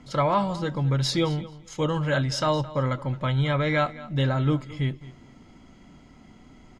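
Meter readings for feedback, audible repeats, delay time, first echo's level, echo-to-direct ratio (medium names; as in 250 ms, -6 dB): 17%, 2, 217 ms, -18.0 dB, -18.0 dB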